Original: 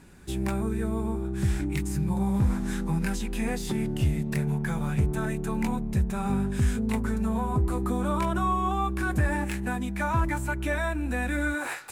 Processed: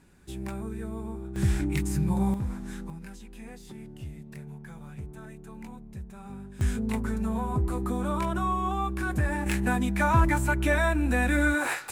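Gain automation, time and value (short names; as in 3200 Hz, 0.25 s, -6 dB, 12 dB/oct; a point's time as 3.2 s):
-7 dB
from 1.36 s +1 dB
from 2.34 s -8 dB
from 2.9 s -15 dB
from 6.61 s -2 dB
from 9.46 s +4 dB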